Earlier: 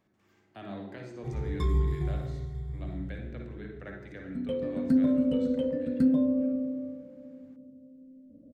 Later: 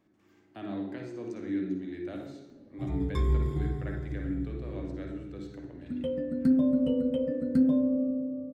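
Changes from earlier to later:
speech: add parametric band 300 Hz +10 dB 0.48 octaves
background: entry +1.55 s

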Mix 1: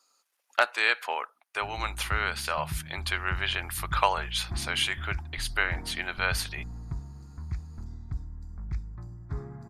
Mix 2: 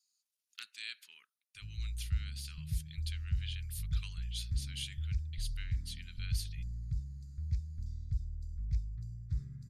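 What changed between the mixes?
speech −10.0 dB
master: add Chebyshev band-stop filter 110–4,000 Hz, order 2

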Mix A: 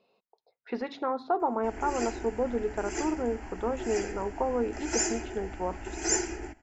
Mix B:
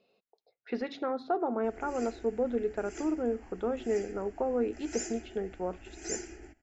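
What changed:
background −10.0 dB
master: add parametric band 970 Hz −11.5 dB 0.47 octaves

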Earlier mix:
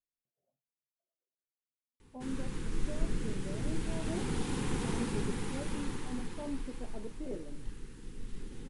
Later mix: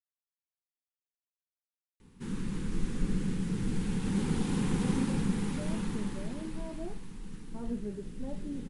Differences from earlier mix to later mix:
speech: entry +2.70 s
master: add parametric band 190 Hz +11 dB 0.6 octaves

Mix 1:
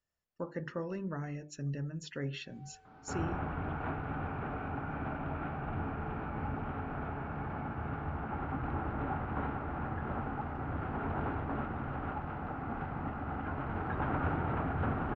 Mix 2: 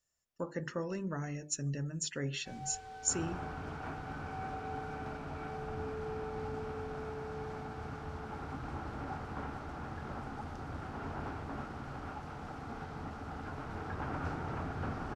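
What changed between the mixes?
first sound +12.0 dB
second sound −6.0 dB
master: remove high-frequency loss of the air 190 metres

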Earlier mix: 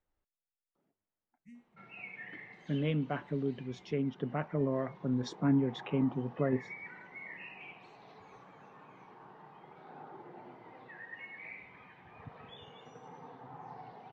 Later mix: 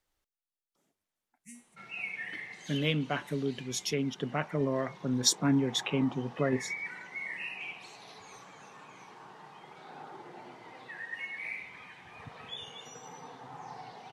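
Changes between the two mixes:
background: add high-frequency loss of the air 67 metres
master: remove head-to-tape spacing loss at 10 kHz 42 dB

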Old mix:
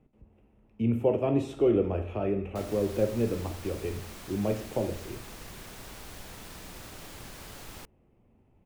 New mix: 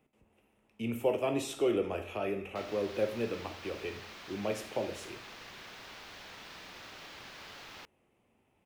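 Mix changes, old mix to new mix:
background: add high-frequency loss of the air 250 metres
master: add spectral tilt +4 dB per octave

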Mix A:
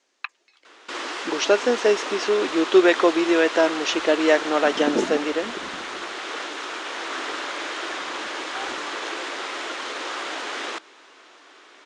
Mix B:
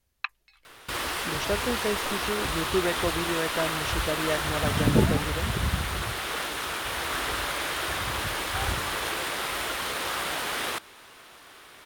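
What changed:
speech −12.0 dB
second sound: add low-shelf EQ 240 Hz −10.5 dB
master: remove elliptic band-pass filter 300–6,900 Hz, stop band 40 dB

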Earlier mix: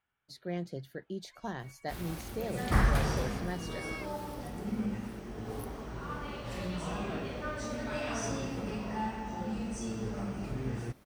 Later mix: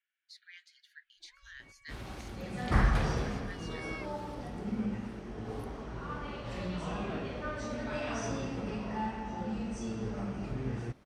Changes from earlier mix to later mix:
speech: add Butterworth high-pass 1,600 Hz 48 dB per octave
master: add high-frequency loss of the air 68 metres

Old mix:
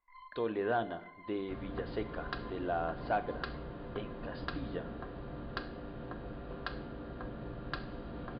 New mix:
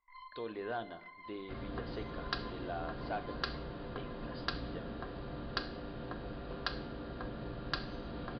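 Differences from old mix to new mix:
speech −8.0 dB
master: remove high-frequency loss of the air 260 metres

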